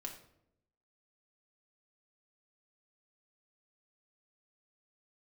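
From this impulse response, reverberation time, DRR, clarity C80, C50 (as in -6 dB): 0.75 s, 0.5 dB, 11.0 dB, 8.0 dB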